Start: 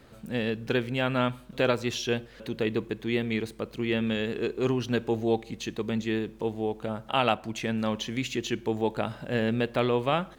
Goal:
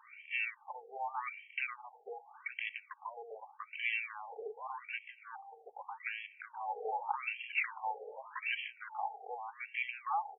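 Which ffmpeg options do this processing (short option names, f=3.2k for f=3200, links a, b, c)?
-filter_complex "[0:a]aecho=1:1:2.6:0.65,acompressor=threshold=-27dB:ratio=16,alimiter=limit=-24dB:level=0:latency=1:release=302,asplit=3[a][b][c];[a]bandpass=f=300:t=q:w=8,volume=0dB[d];[b]bandpass=f=870:t=q:w=8,volume=-6dB[e];[c]bandpass=f=2.24k:t=q:w=8,volume=-9dB[f];[d][e][f]amix=inputs=3:normalize=0,equalizer=f=2.1k:t=o:w=2.4:g=9.5,aeval=exprs='0.0299*sin(PI/2*2*val(0)/0.0299)':c=same,lowshelf=f=160:g=-10,asettb=1/sr,asplit=3[g][h][i];[g]atrim=end=6.364[j];[h]atrim=start=6.36:end=8.7,asetpts=PTS-STARTPTS,afade=t=in:d=0.004:c=qsin,afade=t=out:st=2.336:d=0.004:c=qsin,asplit=8[k][l][m][n][o][p][q][r];[l]adelay=129,afreqshift=50,volume=-10.5dB[s];[m]adelay=258,afreqshift=100,volume=-15.1dB[t];[n]adelay=387,afreqshift=150,volume=-19.7dB[u];[o]adelay=516,afreqshift=200,volume=-24.2dB[v];[p]adelay=645,afreqshift=250,volume=-28.8dB[w];[q]adelay=774,afreqshift=300,volume=-33.4dB[x];[r]adelay=903,afreqshift=350,volume=-38dB[y];[k][s][t][u][v][w][x][y]amix=inputs=8:normalize=0,atrim=end_sample=103194[z];[i]atrim=start=8.696[aa];[j][z]acrossfade=d=0.004:c1=hsin:c2=qsin[ab];[ab][aa]acrossfade=d=0.004:c1=qsin:c2=hsin,afftfilt=real='re*between(b*sr/1024,570*pow(2400/570,0.5+0.5*sin(2*PI*0.84*pts/sr))/1.41,570*pow(2400/570,0.5+0.5*sin(2*PI*0.84*pts/sr))*1.41)':imag='im*between(b*sr/1024,570*pow(2400/570,0.5+0.5*sin(2*PI*0.84*pts/sr))/1.41,570*pow(2400/570,0.5+0.5*sin(2*PI*0.84*pts/sr))*1.41)':win_size=1024:overlap=0.75,volume=7dB"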